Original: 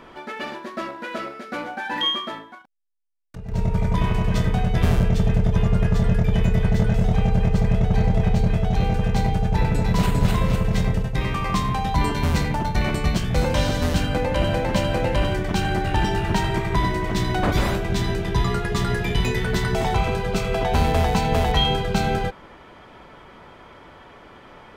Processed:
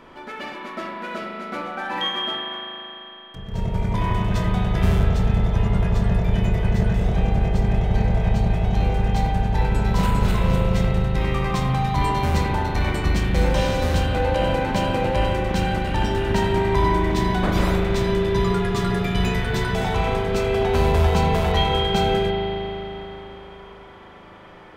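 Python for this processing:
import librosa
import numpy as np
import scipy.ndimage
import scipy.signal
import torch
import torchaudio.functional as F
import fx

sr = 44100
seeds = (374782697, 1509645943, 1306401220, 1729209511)

y = fx.rev_spring(x, sr, rt60_s=3.6, pass_ms=(38,), chirp_ms=30, drr_db=-0.5)
y = y * librosa.db_to_amplitude(-2.5)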